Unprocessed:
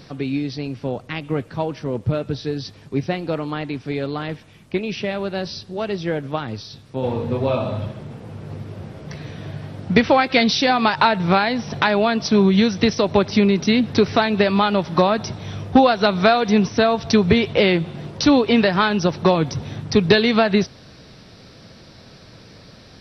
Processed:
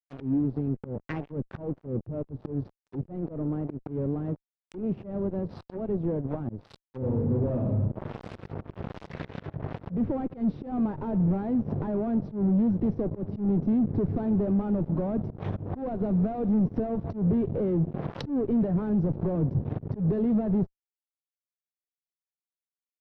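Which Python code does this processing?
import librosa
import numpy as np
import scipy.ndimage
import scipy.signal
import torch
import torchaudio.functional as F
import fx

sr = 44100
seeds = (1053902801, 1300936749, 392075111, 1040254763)

y = fx.fuzz(x, sr, gain_db=26.0, gate_db=-33.0)
y = fx.env_lowpass_down(y, sr, base_hz=350.0, full_db=-16.5)
y = fx.auto_swell(y, sr, attack_ms=128.0)
y = y * librosa.db_to_amplitude(-6.5)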